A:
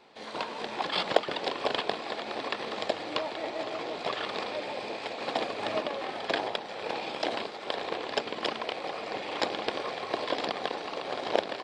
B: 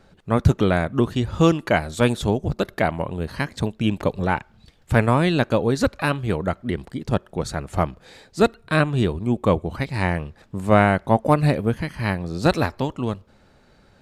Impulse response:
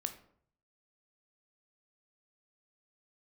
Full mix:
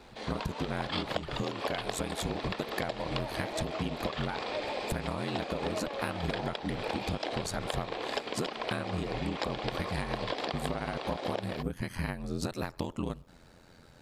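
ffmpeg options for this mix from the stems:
-filter_complex "[0:a]volume=1.5dB[a];[1:a]highshelf=f=6.6k:g=8.5,acompressor=threshold=-22dB:ratio=6,aeval=exprs='val(0)*sin(2*PI*43*n/s)':c=same,volume=1dB[b];[a][b]amix=inputs=2:normalize=0,acompressor=threshold=-29dB:ratio=10"

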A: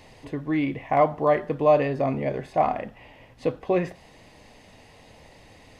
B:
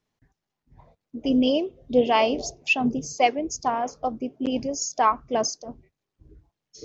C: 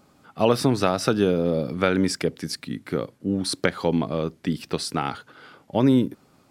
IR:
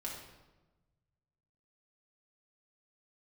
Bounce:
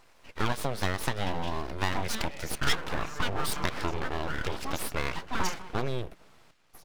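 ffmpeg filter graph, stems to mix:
-filter_complex "[0:a]agate=range=-33dB:threshold=-42dB:ratio=3:detection=peak,adelay=1700,volume=-6dB,asplit=2[a][b];[b]volume=-16dB[c];[1:a]acompressor=threshold=-26dB:ratio=1.5,aeval=exprs='val(0)*pow(10,-19*(0.5-0.5*cos(2*PI*1.5*n/s))/20)':c=same,volume=-0.5dB[d];[2:a]volume=-1.5dB,asplit=2[e][f];[f]apad=whole_len=330585[g];[a][g]sidechaincompress=threshold=-32dB:ratio=12:attack=21:release=249[h];[d][e]amix=inputs=2:normalize=0,asubboost=boost=6:cutoff=120,acompressor=threshold=-27dB:ratio=2.5,volume=0dB[i];[c]aecho=0:1:200|400|600|800|1000|1200|1400:1|0.48|0.23|0.111|0.0531|0.0255|0.0122[j];[h][i][j]amix=inputs=3:normalize=0,asplit=2[k][l];[l]highpass=f=720:p=1,volume=10dB,asoftclip=type=tanh:threshold=-7.5dB[m];[k][m]amix=inputs=2:normalize=0,lowpass=f=4.3k:p=1,volume=-6dB,aeval=exprs='abs(val(0))':c=same"

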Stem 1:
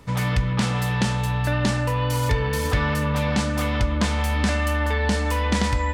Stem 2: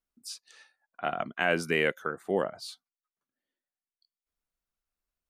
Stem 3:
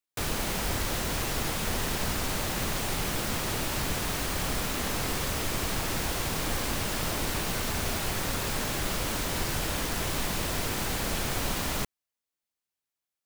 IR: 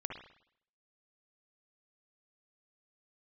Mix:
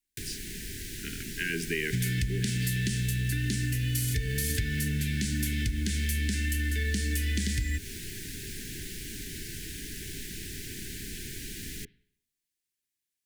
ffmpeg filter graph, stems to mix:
-filter_complex "[0:a]acrossover=split=150[a][b];[b]acompressor=threshold=-24dB:ratio=6[c];[a][c]amix=inputs=2:normalize=0,highshelf=f=7.6k:g=12,adelay=1850,volume=1.5dB[d];[1:a]volume=-3.5dB,asplit=2[e][f];[f]volume=-6.5dB[g];[2:a]acrossover=split=310|640|4400[h][i][j][k];[h]acompressor=threshold=-42dB:ratio=4[l];[i]acompressor=threshold=-52dB:ratio=4[m];[j]acompressor=threshold=-47dB:ratio=4[n];[k]acompressor=threshold=-47dB:ratio=4[o];[l][m][n][o]amix=inputs=4:normalize=0,volume=0dB,asplit=2[p][q];[q]volume=-15dB[r];[3:a]atrim=start_sample=2205[s];[g][r]amix=inputs=2:normalize=0[t];[t][s]afir=irnorm=-1:irlink=0[u];[d][e][p][u]amix=inputs=4:normalize=0,asuperstop=centerf=820:order=20:qfactor=0.72,equalizer=f=9.4k:t=o:w=1.3:g=3.5,acompressor=threshold=-26dB:ratio=6"

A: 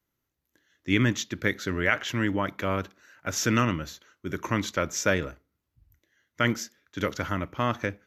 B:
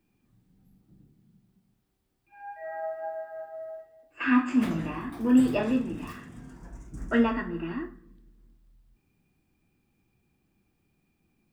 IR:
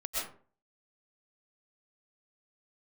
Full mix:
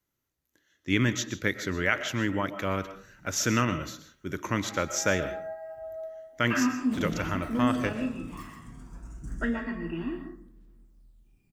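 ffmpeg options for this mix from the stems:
-filter_complex "[0:a]volume=-3dB,asplit=2[a][b];[b]volume=-14dB[c];[1:a]alimiter=limit=-19dB:level=0:latency=1:release=493,aphaser=in_gain=1:out_gain=1:delay=1:decay=0.46:speed=0.24:type=triangular,adelay=2300,volume=-5.5dB,asplit=2[d][e];[e]volume=-7.5dB[f];[2:a]atrim=start_sample=2205[g];[c][f]amix=inputs=2:normalize=0[h];[h][g]afir=irnorm=-1:irlink=0[i];[a][d][i]amix=inputs=3:normalize=0,equalizer=f=8.1k:t=o:w=1.2:g=3.5"

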